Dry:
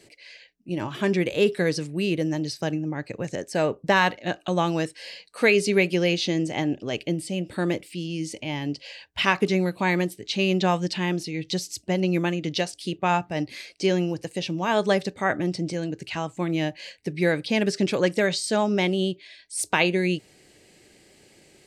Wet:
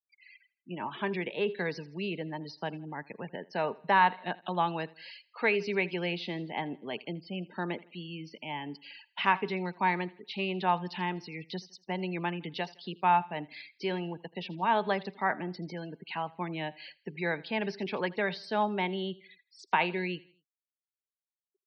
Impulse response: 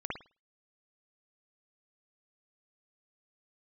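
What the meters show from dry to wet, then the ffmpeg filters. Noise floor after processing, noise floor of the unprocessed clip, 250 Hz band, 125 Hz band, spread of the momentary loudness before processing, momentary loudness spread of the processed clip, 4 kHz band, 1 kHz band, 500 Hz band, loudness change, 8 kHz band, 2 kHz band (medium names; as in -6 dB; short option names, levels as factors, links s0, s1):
under -85 dBFS, -57 dBFS, -11.5 dB, -11.0 dB, 10 LU, 14 LU, -10.0 dB, -0.5 dB, -9.5 dB, -7.5 dB, under -25 dB, -6.5 dB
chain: -filter_complex "[0:a]highpass=f=180:w=0.5412,highpass=f=180:w=1.3066,equalizer=f=310:t=q:w=4:g=-9,equalizer=f=540:t=q:w=4:g=-7,equalizer=f=910:t=q:w=4:g=8,lowpass=f=4800:w=0.5412,lowpass=f=4800:w=1.3066,afftfilt=real='re*gte(hypot(re,im),0.0126)':imag='im*gte(hypot(re,im),0.0126)':win_size=1024:overlap=0.75,acrossover=split=340[s0][s1];[s0]alimiter=level_in=1.5:limit=0.0631:level=0:latency=1:release=20,volume=0.668[s2];[s2][s1]amix=inputs=2:normalize=0,aecho=1:1:81|162|243:0.075|0.0322|0.0139,acrossover=split=2900[s3][s4];[s4]acompressor=threshold=0.0112:ratio=4:attack=1:release=60[s5];[s3][s5]amix=inputs=2:normalize=0,volume=0.531"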